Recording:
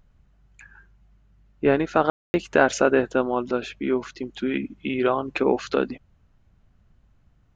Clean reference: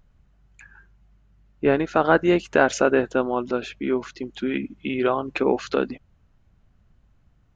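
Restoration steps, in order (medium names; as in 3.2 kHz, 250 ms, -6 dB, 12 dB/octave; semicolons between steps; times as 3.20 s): room tone fill 2.10–2.34 s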